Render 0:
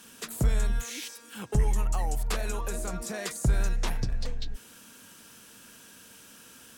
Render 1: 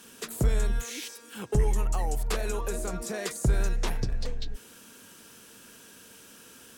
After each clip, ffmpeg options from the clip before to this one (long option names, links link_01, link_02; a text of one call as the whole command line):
ffmpeg -i in.wav -af "equalizer=frequency=410:width_type=o:width=0.64:gain=5.5" out.wav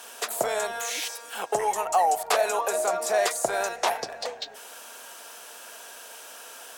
ffmpeg -i in.wav -af "highpass=frequency=700:width_type=q:width=3.6,volume=7dB" out.wav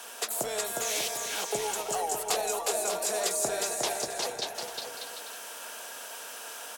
ffmpeg -i in.wav -filter_complex "[0:a]acrossover=split=410|3000[link_01][link_02][link_03];[link_02]acompressor=threshold=-37dB:ratio=6[link_04];[link_01][link_04][link_03]amix=inputs=3:normalize=0,asplit=2[link_05][link_06];[link_06]aecho=0:1:360|594|746.1|845|909.2:0.631|0.398|0.251|0.158|0.1[link_07];[link_05][link_07]amix=inputs=2:normalize=0" out.wav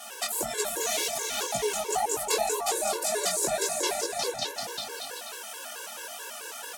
ffmpeg -i in.wav -af "flanger=delay=17:depth=6.6:speed=1.9,afftfilt=real='re*gt(sin(2*PI*4.6*pts/sr)*(1-2*mod(floor(b*sr/1024/290),2)),0)':imag='im*gt(sin(2*PI*4.6*pts/sr)*(1-2*mod(floor(b*sr/1024/290),2)),0)':win_size=1024:overlap=0.75,volume=8.5dB" out.wav